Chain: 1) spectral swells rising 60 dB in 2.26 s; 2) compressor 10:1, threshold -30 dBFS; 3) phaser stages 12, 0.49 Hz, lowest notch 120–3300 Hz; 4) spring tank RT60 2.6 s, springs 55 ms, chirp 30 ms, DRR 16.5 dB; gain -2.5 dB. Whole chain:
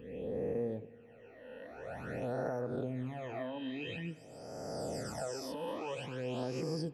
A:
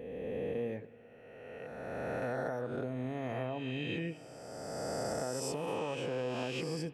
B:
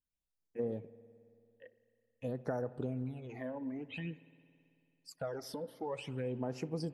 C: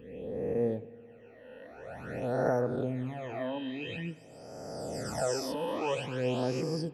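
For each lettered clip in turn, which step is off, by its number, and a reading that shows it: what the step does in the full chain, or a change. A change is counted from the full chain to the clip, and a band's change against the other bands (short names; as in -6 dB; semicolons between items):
3, 8 kHz band +2.5 dB; 1, 8 kHz band -4.0 dB; 2, mean gain reduction 3.5 dB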